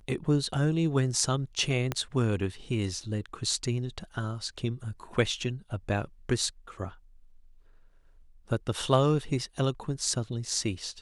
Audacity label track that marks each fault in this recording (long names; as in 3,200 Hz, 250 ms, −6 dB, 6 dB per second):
1.920000	1.920000	click −14 dBFS